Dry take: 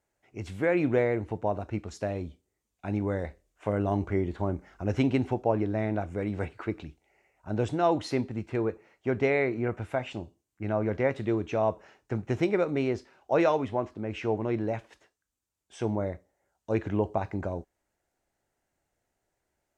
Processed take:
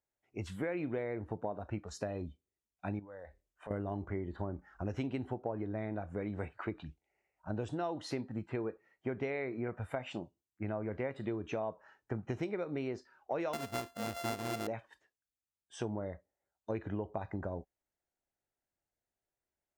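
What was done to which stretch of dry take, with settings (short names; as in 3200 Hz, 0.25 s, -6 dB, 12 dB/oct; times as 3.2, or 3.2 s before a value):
2.99–3.71 compressor 2.5:1, threshold -45 dBFS
13.53–14.67 sample sorter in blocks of 64 samples
whole clip: spectral noise reduction 13 dB; compressor 6:1, threshold -33 dBFS; gain -1 dB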